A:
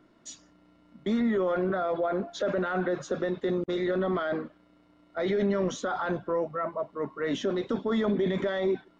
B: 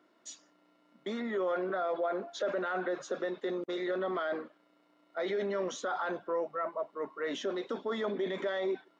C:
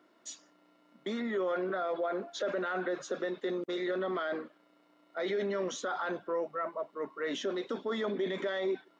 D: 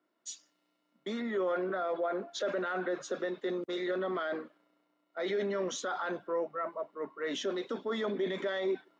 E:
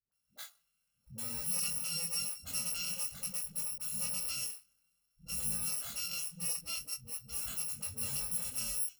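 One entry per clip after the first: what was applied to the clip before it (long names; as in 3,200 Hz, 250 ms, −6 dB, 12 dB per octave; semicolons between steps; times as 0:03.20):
high-pass filter 370 Hz 12 dB per octave; level −3 dB
dynamic equaliser 790 Hz, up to −4 dB, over −47 dBFS, Q 0.89; level +2 dB
multiband upward and downward expander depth 40%
samples in bit-reversed order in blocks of 128 samples; all-pass dispersion highs, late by 119 ms, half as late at 300 Hz; chorus effect 0.53 Hz, delay 19.5 ms, depth 3.6 ms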